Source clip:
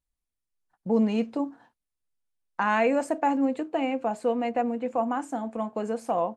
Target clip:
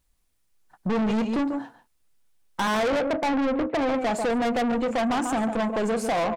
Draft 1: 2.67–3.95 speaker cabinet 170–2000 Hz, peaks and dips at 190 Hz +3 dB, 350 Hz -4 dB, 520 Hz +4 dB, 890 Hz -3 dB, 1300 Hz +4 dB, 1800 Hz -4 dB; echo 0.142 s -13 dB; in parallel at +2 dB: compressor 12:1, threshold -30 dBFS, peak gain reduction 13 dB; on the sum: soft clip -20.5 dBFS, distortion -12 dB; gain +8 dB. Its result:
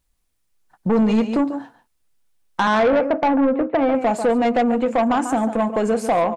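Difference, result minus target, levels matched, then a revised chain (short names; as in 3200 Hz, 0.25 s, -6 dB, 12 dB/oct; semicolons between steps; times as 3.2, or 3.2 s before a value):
soft clip: distortion -6 dB
2.67–3.95 speaker cabinet 170–2000 Hz, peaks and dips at 190 Hz +3 dB, 350 Hz -4 dB, 520 Hz +4 dB, 890 Hz -3 dB, 1300 Hz +4 dB, 1800 Hz -4 dB; echo 0.142 s -13 dB; in parallel at +2 dB: compressor 12:1, threshold -30 dBFS, peak gain reduction 13 dB; on the sum: soft clip -30 dBFS, distortion -5 dB; gain +8 dB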